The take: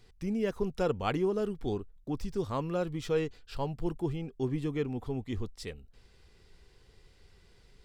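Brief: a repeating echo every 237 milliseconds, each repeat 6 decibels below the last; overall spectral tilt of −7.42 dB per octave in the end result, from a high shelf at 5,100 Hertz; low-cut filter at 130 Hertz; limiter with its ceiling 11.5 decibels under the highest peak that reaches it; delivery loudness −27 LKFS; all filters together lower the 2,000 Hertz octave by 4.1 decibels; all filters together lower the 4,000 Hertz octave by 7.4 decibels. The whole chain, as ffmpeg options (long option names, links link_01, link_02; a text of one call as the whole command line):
ffmpeg -i in.wav -af "highpass=130,equalizer=frequency=2000:width_type=o:gain=-3,equalizer=frequency=4000:width_type=o:gain=-6.5,highshelf=frequency=5100:gain=-6,alimiter=level_in=5.5dB:limit=-24dB:level=0:latency=1,volume=-5.5dB,aecho=1:1:237|474|711|948|1185|1422:0.501|0.251|0.125|0.0626|0.0313|0.0157,volume=10.5dB" out.wav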